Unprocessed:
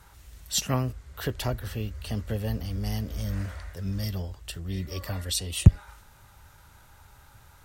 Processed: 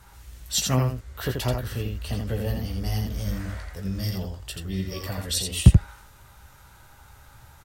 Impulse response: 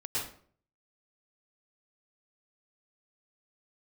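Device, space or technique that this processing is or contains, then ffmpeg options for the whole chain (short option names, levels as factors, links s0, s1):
slapback doubling: -filter_complex "[0:a]asplit=3[s0][s1][s2];[s1]adelay=16,volume=0.501[s3];[s2]adelay=84,volume=0.631[s4];[s0][s3][s4]amix=inputs=3:normalize=0,volume=1.12"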